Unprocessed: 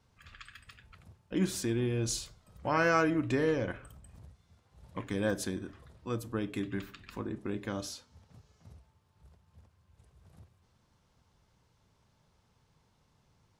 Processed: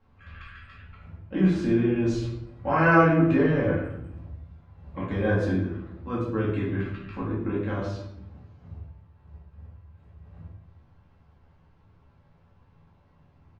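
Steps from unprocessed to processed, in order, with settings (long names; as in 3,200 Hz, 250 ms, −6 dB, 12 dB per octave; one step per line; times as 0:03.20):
low-pass filter 2,100 Hz 12 dB per octave
double-tracking delay 12 ms −6.5 dB
rectangular room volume 200 cubic metres, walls mixed, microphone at 2.2 metres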